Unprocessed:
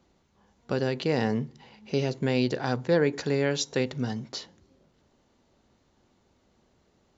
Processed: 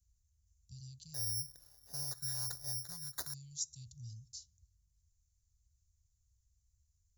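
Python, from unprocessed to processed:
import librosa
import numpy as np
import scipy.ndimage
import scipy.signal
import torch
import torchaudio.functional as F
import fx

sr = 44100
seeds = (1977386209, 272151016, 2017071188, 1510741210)

y = scipy.signal.sosfilt(scipy.signal.cheby2(4, 70, [320.0, 1900.0], 'bandstop', fs=sr, output='sos'), x)
y = fx.resample_bad(y, sr, factor=8, down='none', up='zero_stuff', at=(1.14, 3.34))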